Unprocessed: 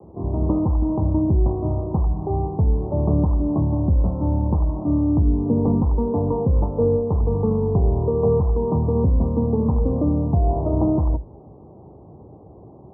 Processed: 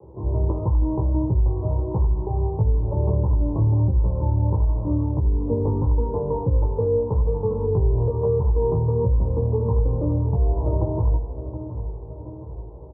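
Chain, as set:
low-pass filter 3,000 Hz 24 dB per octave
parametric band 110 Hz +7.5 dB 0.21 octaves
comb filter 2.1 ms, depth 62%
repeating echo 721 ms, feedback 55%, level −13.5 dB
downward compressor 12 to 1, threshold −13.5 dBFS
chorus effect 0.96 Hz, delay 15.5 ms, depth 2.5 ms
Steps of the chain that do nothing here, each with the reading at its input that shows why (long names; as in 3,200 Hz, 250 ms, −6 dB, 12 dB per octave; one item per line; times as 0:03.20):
low-pass filter 3,000 Hz: nothing at its input above 960 Hz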